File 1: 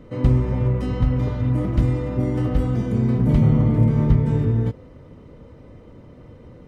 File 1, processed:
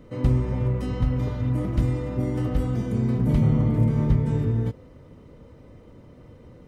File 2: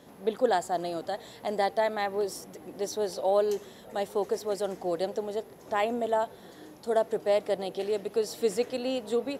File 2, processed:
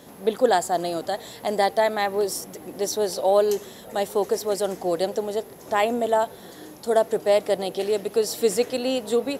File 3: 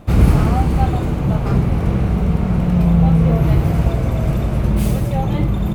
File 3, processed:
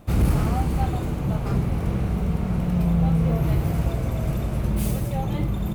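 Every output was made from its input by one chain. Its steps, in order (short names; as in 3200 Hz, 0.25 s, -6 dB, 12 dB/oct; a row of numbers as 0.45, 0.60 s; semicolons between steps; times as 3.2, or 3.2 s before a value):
high shelf 6400 Hz +8 dB; overloaded stage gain 6 dB; match loudness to -24 LUFS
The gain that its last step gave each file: -4.0, +6.0, -7.0 dB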